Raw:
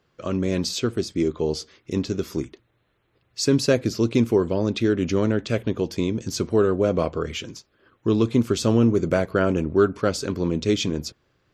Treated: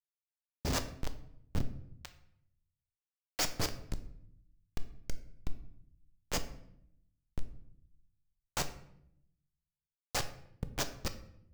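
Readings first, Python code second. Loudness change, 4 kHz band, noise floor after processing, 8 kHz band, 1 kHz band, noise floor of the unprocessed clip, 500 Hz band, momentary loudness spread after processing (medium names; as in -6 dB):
-16.5 dB, -11.0 dB, under -85 dBFS, -8.0 dB, -12.5 dB, -68 dBFS, -26.0 dB, 19 LU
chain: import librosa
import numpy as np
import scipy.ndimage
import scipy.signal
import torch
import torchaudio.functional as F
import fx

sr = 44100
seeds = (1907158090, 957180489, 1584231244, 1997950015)

y = scipy.signal.sosfilt(scipy.signal.cheby2(4, 60, [250.0, 1700.0], 'bandstop', fs=sr, output='sos'), x)
y = fx.schmitt(y, sr, flips_db=-27.5)
y = fx.harmonic_tremolo(y, sr, hz=3.1, depth_pct=70, crossover_hz=520.0)
y = fx.room_shoebox(y, sr, seeds[0], volume_m3=160.0, walls='mixed', distance_m=0.37)
y = F.gain(torch.from_numpy(y), 10.5).numpy()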